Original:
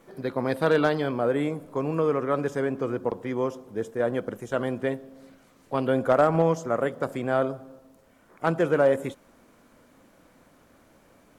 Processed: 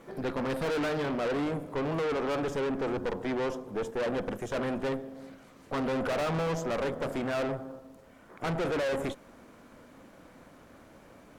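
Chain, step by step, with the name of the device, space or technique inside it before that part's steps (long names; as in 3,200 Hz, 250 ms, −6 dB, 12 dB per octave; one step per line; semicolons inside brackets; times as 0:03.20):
tube preamp driven hard (tube saturation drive 35 dB, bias 0.6; high-shelf EQ 5,800 Hz −7 dB)
level +7 dB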